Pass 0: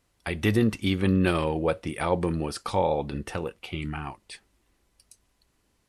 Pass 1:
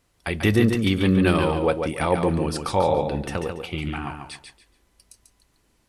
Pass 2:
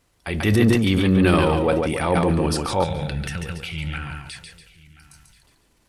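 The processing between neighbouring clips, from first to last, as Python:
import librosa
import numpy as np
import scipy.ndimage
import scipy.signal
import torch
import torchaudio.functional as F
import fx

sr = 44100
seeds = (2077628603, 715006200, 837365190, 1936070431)

y1 = fx.echo_feedback(x, sr, ms=142, feedback_pct=25, wet_db=-6)
y1 = F.gain(torch.from_numpy(y1), 3.5).numpy()
y2 = fx.transient(y1, sr, attack_db=-5, sustain_db=8)
y2 = y2 + 10.0 ** (-21.5 / 20.0) * np.pad(y2, (int(1033 * sr / 1000.0), 0))[:len(y2)]
y2 = fx.spec_box(y2, sr, start_s=2.84, length_s=2.59, low_hz=200.0, high_hz=1300.0, gain_db=-13)
y2 = F.gain(torch.from_numpy(y2), 2.0).numpy()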